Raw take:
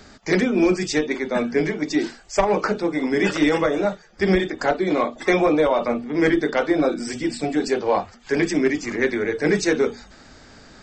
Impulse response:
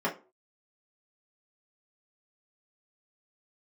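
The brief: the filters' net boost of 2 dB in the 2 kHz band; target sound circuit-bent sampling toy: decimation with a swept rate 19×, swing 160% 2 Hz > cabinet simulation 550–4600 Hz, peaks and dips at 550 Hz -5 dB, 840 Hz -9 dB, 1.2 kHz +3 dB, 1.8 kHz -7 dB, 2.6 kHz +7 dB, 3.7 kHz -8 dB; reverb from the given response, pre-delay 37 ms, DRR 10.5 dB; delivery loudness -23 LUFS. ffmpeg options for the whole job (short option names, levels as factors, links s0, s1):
-filter_complex "[0:a]equalizer=f=2000:t=o:g=4.5,asplit=2[s0][s1];[1:a]atrim=start_sample=2205,adelay=37[s2];[s1][s2]afir=irnorm=-1:irlink=0,volume=0.0944[s3];[s0][s3]amix=inputs=2:normalize=0,acrusher=samples=19:mix=1:aa=0.000001:lfo=1:lforange=30.4:lforate=2,highpass=550,equalizer=f=550:t=q:w=4:g=-5,equalizer=f=840:t=q:w=4:g=-9,equalizer=f=1200:t=q:w=4:g=3,equalizer=f=1800:t=q:w=4:g=-7,equalizer=f=2600:t=q:w=4:g=7,equalizer=f=3700:t=q:w=4:g=-8,lowpass=f=4600:w=0.5412,lowpass=f=4600:w=1.3066,volume=1.41"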